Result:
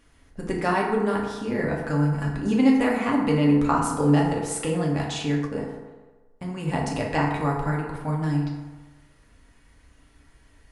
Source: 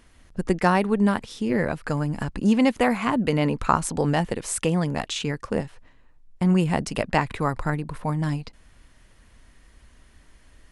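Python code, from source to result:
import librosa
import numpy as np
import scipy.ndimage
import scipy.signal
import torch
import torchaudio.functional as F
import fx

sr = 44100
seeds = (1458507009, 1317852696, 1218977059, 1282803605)

y = fx.rev_fdn(x, sr, rt60_s=1.3, lf_ratio=0.8, hf_ratio=0.45, size_ms=21.0, drr_db=-3.0)
y = fx.upward_expand(y, sr, threshold_db=-16.0, expansion=1.5, at=(5.46, 6.67), fade=0.02)
y = y * 10.0 ** (-6.0 / 20.0)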